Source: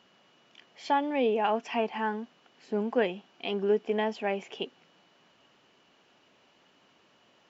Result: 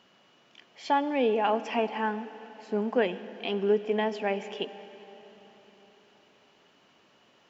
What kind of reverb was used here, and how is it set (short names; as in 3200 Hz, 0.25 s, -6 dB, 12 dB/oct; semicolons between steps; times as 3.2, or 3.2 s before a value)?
digital reverb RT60 4.2 s, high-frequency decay 0.85×, pre-delay 25 ms, DRR 13.5 dB; gain +1 dB